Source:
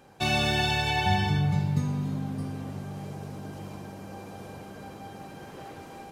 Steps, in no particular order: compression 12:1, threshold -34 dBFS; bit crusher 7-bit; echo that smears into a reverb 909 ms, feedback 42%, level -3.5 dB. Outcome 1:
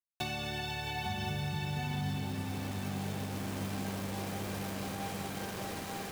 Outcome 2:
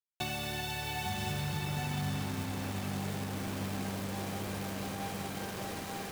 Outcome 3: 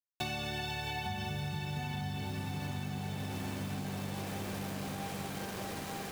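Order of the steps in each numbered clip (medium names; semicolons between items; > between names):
bit crusher > compression > echo that smears into a reverb; compression > bit crusher > echo that smears into a reverb; bit crusher > echo that smears into a reverb > compression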